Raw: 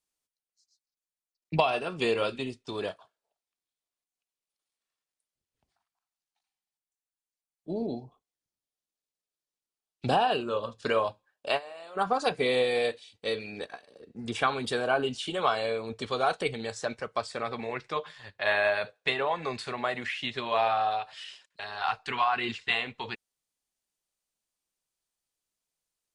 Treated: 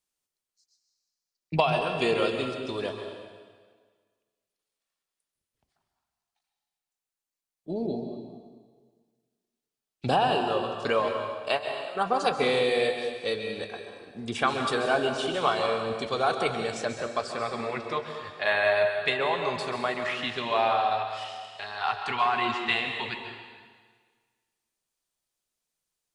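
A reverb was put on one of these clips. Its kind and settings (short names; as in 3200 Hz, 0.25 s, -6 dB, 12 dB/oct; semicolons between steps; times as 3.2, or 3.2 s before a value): plate-style reverb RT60 1.6 s, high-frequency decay 0.95×, pre-delay 0.12 s, DRR 4.5 dB; gain +1 dB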